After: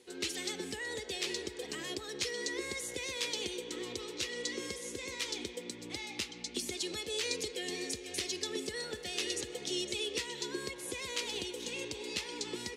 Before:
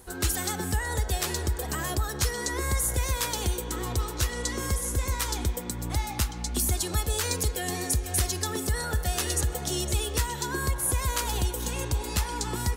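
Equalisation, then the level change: BPF 410–4500 Hz; band shelf 1000 Hz -15.5 dB; 0.0 dB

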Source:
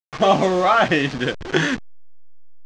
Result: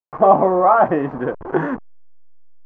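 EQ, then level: EQ curve 110 Hz 0 dB, 1000 Hz +11 dB, 3800 Hz -28 dB; -4.5 dB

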